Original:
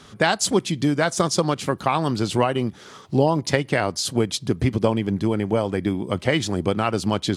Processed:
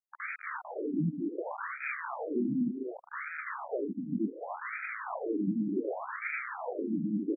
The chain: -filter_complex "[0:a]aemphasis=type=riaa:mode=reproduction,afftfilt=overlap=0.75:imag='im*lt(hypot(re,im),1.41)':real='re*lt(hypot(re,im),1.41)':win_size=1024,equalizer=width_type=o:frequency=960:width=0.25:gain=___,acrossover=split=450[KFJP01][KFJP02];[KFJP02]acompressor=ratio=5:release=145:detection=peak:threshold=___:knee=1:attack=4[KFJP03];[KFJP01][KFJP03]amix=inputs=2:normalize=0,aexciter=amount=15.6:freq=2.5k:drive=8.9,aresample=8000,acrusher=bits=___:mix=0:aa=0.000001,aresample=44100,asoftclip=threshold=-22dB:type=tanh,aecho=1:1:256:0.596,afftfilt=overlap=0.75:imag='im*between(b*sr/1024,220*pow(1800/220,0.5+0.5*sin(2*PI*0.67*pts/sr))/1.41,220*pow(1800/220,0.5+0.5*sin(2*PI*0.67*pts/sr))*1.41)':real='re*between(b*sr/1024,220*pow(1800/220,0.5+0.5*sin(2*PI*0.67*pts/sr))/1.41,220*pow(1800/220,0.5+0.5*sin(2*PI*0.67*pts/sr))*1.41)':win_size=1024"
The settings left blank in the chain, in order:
-2.5, -36dB, 3